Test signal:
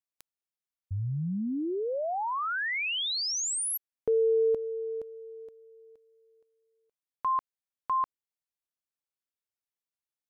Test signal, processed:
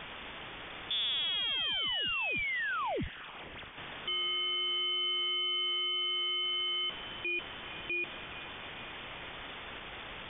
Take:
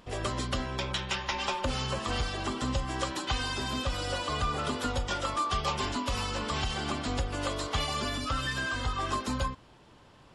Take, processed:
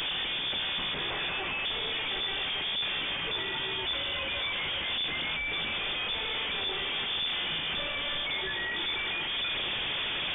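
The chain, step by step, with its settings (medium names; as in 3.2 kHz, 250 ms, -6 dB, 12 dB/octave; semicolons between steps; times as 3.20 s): one-bit comparator; echo that smears into a reverb 503 ms, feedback 60%, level -16 dB; frequency inversion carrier 3.5 kHz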